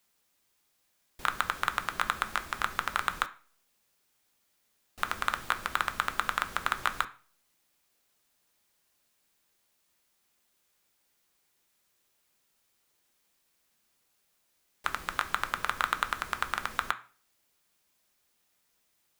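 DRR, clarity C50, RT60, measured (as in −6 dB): 8.5 dB, 17.0 dB, 0.40 s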